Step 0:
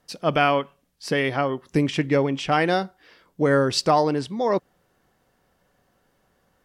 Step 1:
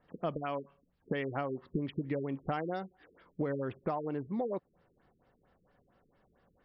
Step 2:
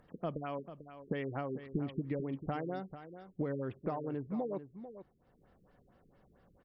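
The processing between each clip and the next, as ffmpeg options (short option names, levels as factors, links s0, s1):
-af "highshelf=f=3400:g=-8,acompressor=threshold=0.0398:ratio=16,afftfilt=real='re*lt(b*sr/1024,450*pow(5800/450,0.5+0.5*sin(2*PI*4.4*pts/sr)))':imag='im*lt(b*sr/1024,450*pow(5800/450,0.5+0.5*sin(2*PI*4.4*pts/sr)))':win_size=1024:overlap=0.75,volume=0.75"
-af "aecho=1:1:443:0.251,acompressor=mode=upward:threshold=0.00158:ratio=2.5,lowshelf=f=420:g=5.5,volume=0.531"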